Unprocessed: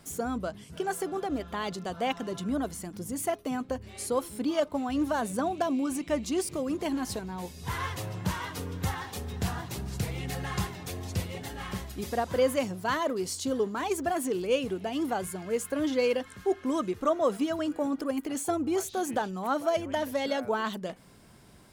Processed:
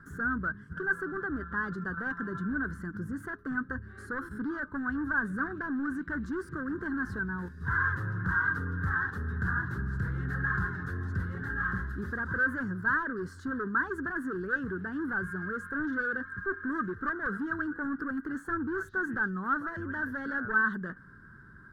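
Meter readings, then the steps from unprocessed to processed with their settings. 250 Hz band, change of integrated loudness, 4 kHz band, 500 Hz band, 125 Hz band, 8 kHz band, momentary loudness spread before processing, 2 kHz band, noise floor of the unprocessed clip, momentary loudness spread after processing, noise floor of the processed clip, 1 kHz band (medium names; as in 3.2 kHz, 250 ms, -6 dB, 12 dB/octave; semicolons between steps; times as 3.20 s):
-3.0 dB, -1.0 dB, under -20 dB, -11.5 dB, +1.5 dB, under -20 dB, 8 LU, +10.5 dB, -52 dBFS, 7 LU, -51 dBFS, -3.0 dB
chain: in parallel at +2.5 dB: level held to a coarse grid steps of 22 dB; on the sum: hard clipper -25.5 dBFS, distortion -9 dB; FFT filter 140 Hz 0 dB, 390 Hz -6 dB, 690 Hz -23 dB, 1.6 kHz +15 dB, 2.3 kHz -28 dB, 4 kHz -23 dB, 7 kHz -28 dB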